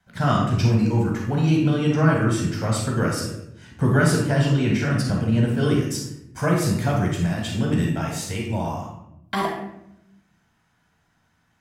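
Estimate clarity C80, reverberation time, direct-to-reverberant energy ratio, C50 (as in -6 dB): 5.5 dB, 0.80 s, -2.0 dB, 2.0 dB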